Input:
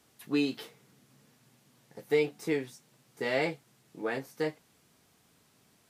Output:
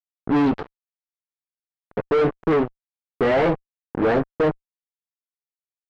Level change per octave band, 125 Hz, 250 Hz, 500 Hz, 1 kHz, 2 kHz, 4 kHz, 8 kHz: +14.0 dB, +11.5 dB, +11.0 dB, +16.0 dB, +6.5 dB, +2.0 dB, no reading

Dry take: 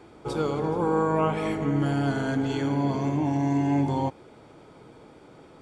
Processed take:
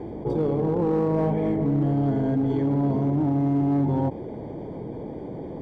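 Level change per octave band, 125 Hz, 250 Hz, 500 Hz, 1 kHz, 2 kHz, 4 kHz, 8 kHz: +3.5 dB, +3.0 dB, +2.0 dB, -3.5 dB, under -10 dB, under -10 dB, no reading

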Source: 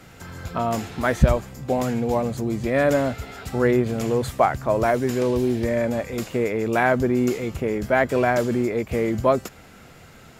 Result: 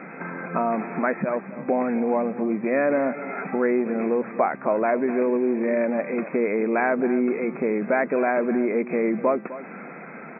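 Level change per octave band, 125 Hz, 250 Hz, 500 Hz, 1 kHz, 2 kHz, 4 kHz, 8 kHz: -14.5 dB, 0.0 dB, -1.0 dB, -1.5 dB, -1.5 dB, under -40 dB, under -40 dB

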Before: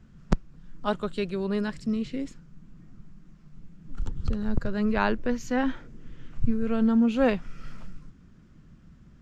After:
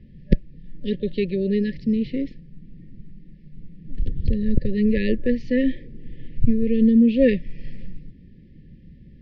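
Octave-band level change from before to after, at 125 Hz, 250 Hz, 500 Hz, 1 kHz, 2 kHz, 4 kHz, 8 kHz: +6.5 dB, +6.5 dB, +5.5 dB, under -40 dB, -0.5 dB, +1.5 dB, no reading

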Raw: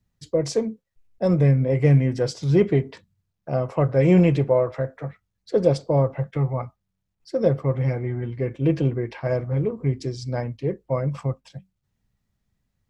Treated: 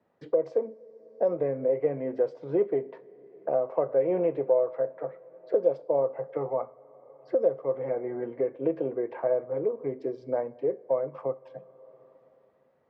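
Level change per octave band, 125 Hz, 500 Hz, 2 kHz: -24.5 dB, -2.0 dB, under -10 dB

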